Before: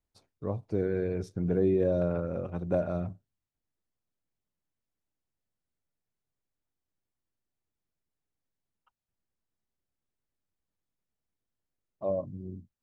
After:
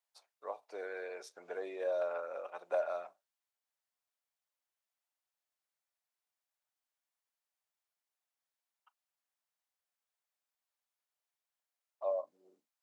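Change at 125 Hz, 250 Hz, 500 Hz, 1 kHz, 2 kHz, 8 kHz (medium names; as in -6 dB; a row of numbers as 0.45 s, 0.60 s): under -40 dB, -25.5 dB, -7.0 dB, 0.0 dB, +1.0 dB, no reading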